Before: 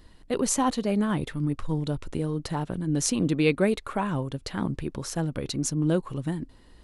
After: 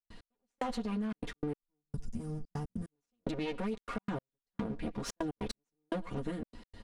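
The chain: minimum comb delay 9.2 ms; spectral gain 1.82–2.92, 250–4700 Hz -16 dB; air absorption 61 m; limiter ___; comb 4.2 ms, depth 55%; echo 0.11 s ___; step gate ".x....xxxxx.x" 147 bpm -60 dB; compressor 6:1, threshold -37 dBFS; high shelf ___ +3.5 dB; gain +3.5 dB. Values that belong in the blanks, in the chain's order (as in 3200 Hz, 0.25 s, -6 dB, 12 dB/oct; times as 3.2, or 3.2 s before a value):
-21 dBFS, -22.5 dB, 10000 Hz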